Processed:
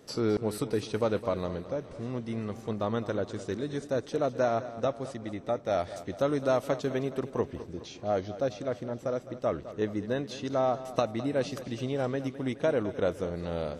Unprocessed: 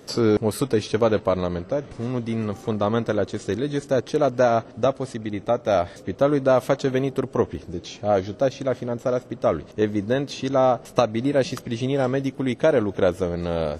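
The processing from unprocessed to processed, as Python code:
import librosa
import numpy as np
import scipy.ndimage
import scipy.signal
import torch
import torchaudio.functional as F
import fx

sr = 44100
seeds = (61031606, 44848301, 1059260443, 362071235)

y = fx.high_shelf(x, sr, hz=3500.0, db=9.0, at=(5.79, 6.57))
y = fx.echo_feedback(y, sr, ms=210, feedback_pct=56, wet_db=-14.5)
y = y * 10.0 ** (-8.5 / 20.0)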